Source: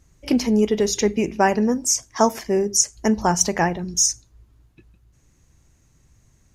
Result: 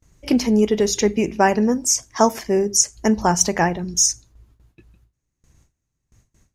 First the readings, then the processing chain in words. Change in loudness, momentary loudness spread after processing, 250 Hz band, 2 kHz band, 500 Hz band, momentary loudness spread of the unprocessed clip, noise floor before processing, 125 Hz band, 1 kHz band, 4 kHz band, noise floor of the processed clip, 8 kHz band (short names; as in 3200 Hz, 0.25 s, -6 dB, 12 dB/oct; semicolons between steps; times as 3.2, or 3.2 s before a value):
+1.5 dB, 4 LU, +1.5 dB, +1.5 dB, +1.5 dB, 4 LU, -60 dBFS, +1.5 dB, +1.5 dB, +1.5 dB, -78 dBFS, +1.5 dB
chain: gate with hold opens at -46 dBFS; gain +1.5 dB